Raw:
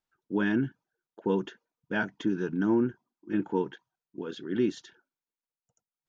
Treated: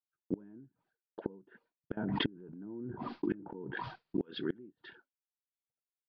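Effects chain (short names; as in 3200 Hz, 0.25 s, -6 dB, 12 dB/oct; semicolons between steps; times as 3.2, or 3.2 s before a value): expander -58 dBFS; treble ducked by the level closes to 620 Hz, closed at -26 dBFS; elliptic low-pass 4700 Hz; flipped gate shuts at -26 dBFS, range -30 dB; 1.97–4.22 backwards sustainer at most 22 dB/s; gain +5 dB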